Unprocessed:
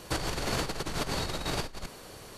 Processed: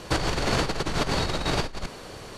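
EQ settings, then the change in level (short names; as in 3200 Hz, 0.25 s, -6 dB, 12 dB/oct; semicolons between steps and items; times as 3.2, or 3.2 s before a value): air absorption 52 m; +7.0 dB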